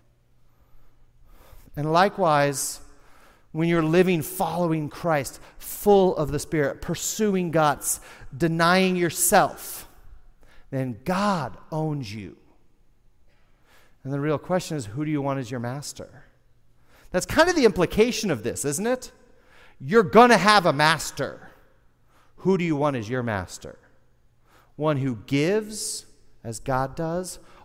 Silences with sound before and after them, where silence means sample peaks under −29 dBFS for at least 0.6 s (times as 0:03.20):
0:02.76–0:03.55
0:09.79–0:10.73
0:12.29–0:14.06
0:16.03–0:17.14
0:19.05–0:19.84
0:21.33–0:22.45
0:23.69–0:24.79